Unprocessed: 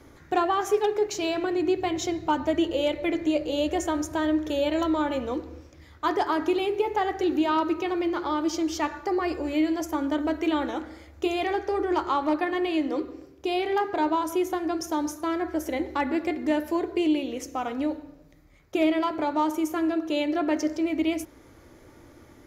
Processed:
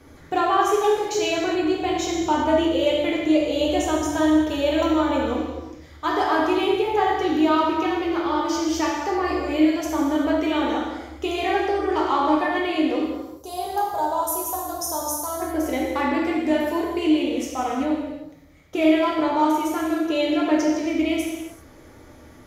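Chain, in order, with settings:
0:13.03–0:15.42: drawn EQ curve 130 Hz 0 dB, 210 Hz −7 dB, 330 Hz −13 dB, 550 Hz −1 dB, 1,100 Hz −1 dB, 2,400 Hz −21 dB, 4,000 Hz −4 dB, 11,000 Hz +14 dB
convolution reverb, pre-delay 3 ms, DRR −3.5 dB

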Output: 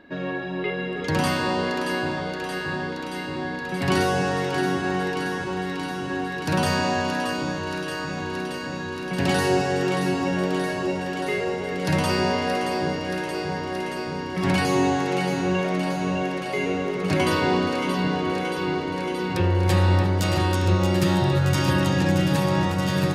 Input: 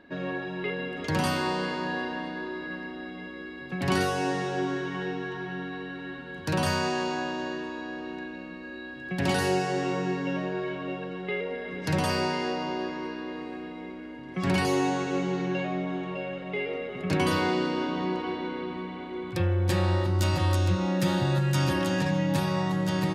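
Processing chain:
delay that swaps between a low-pass and a high-pass 313 ms, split 1,100 Hz, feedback 89%, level −6 dB
level +3.5 dB

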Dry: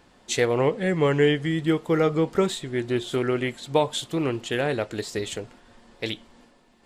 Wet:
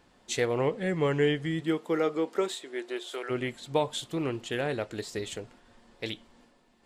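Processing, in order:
0:01.60–0:03.29: high-pass filter 160 Hz → 490 Hz 24 dB per octave
level −5.5 dB

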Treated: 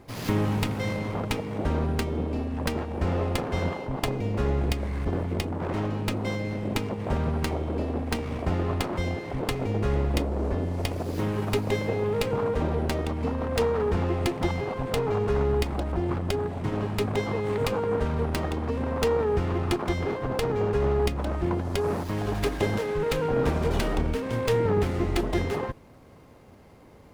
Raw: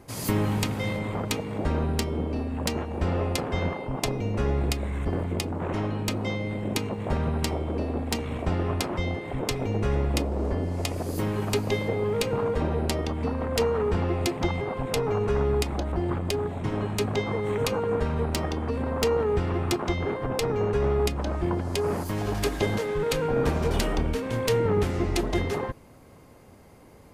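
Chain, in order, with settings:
windowed peak hold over 5 samples

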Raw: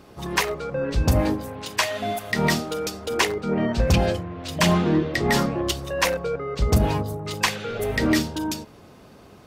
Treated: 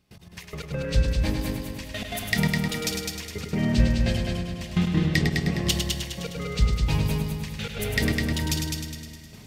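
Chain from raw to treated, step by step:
noise gate with hold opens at −37 dBFS
gate pattern "xx....x.xxxx..xx" 170 BPM −24 dB
in parallel at −1 dB: downward compressor, threshold −31 dBFS, peak gain reduction 14.5 dB
on the sum: flat-topped bell 630 Hz −11 dB 2.8 octaves
echo machine with several playback heads 103 ms, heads first and second, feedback 50%, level −6 dB
on a send at −17 dB: convolution reverb RT60 4.7 s, pre-delay 208 ms
on the sum: every ending faded ahead of time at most 270 dB per second

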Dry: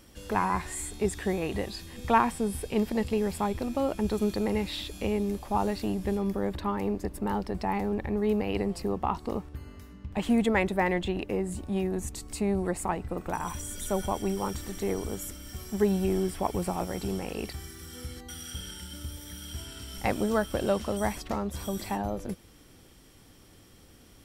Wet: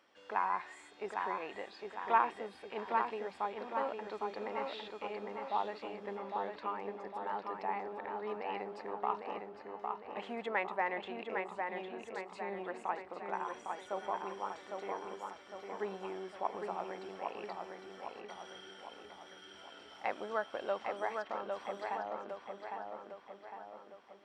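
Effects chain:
high-pass filter 800 Hz 12 dB per octave
head-to-tape spacing loss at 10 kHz 34 dB
feedback echo with a low-pass in the loop 806 ms, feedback 54%, low-pass 3,700 Hz, level −4 dB

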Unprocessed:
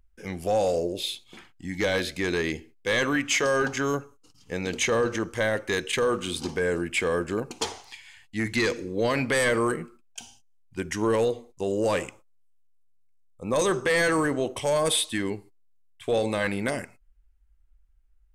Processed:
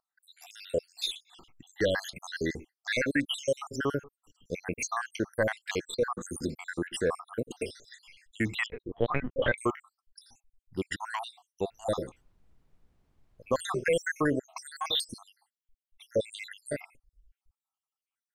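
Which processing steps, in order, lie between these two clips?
time-frequency cells dropped at random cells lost 74%
0:08.66–0:09.58: linear-prediction vocoder at 8 kHz pitch kept
0:11.70–0:13.60: background noise brown −65 dBFS

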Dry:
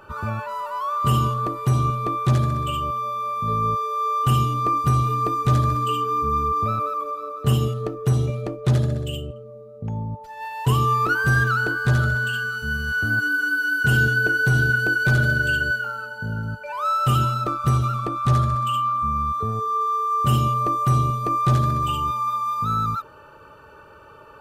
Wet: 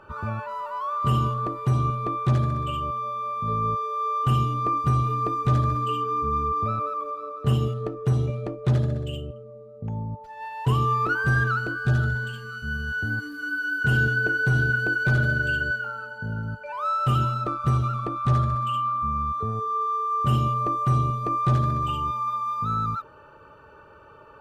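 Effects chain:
low-pass filter 2,800 Hz 6 dB per octave
0:11.59–0:13.82: phaser whose notches keep moving one way rising 1.1 Hz
level −2.5 dB

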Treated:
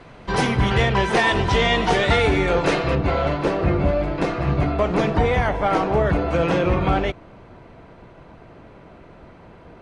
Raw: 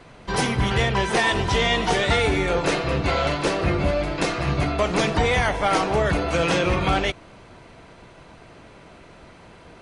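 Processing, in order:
low-pass filter 3,400 Hz 6 dB per octave, from 0:02.95 1,100 Hz
level +3 dB

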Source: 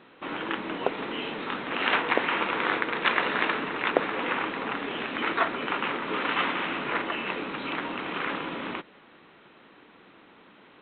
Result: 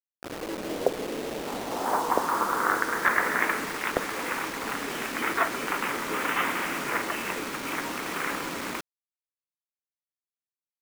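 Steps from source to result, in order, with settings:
wavefolder on the positive side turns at −10 dBFS
parametric band 2,700 Hz −10 dB 0.62 octaves
automatic gain control gain up to 5 dB
low-pass filter sweep 570 Hz → 2,600 Hz, 0:01.19–0:03.75
bit reduction 5 bits
level −6 dB

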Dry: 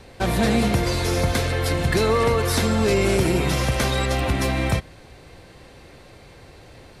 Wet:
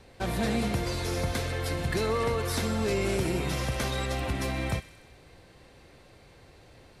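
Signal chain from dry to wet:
delay with a high-pass on its return 63 ms, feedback 70%, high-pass 1,800 Hz, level −14 dB
level −8.5 dB

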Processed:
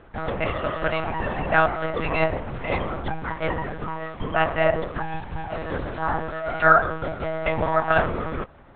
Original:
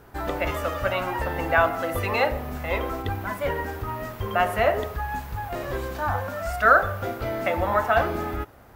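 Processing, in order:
one-pitch LPC vocoder at 8 kHz 160 Hz
level +1 dB

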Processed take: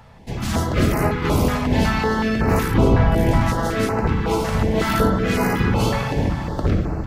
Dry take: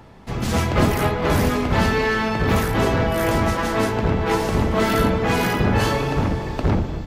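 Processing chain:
0:02.74–0:03.41: spectral tilt −2 dB per octave
bucket-brigade delay 68 ms, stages 1,024, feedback 79%, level −9 dB
notch on a step sequencer 5.4 Hz 330–3,400 Hz

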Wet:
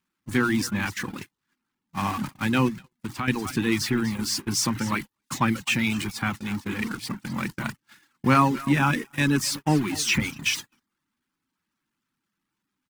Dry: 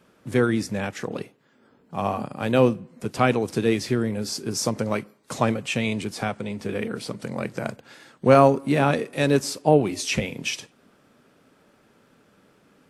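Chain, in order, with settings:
converter with a step at zero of −28 dBFS
dynamic equaliser 1,800 Hz, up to +3 dB, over −38 dBFS, Q 1.3
on a send: single-tap delay 245 ms −13.5 dB
on the sum: reverb reduction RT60 0.58 s
flat-topped bell 540 Hz −15 dB 1 octave
mains-hum notches 60/120 Hz
noise gate −29 dBFS, range −46 dB
0:02.68–0:03.28: downward compressor 3 to 1, threshold −30 dBFS, peak gain reduction 11 dB
0:08.68–0:09.39: notch filter 4,300 Hz, Q 5.2

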